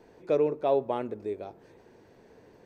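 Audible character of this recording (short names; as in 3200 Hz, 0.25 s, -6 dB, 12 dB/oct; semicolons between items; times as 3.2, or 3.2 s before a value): noise floor -58 dBFS; spectral tilt -4.5 dB/oct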